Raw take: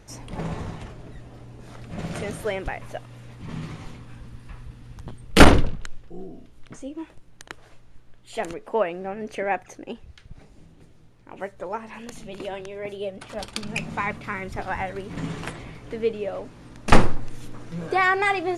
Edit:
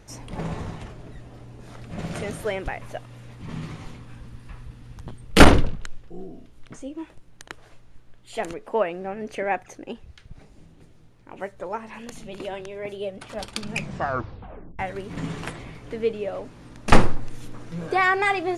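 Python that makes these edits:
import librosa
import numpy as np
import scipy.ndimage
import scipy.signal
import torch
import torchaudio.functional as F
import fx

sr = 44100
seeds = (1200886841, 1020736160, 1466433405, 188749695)

y = fx.edit(x, sr, fx.tape_stop(start_s=13.76, length_s=1.03), tone=tone)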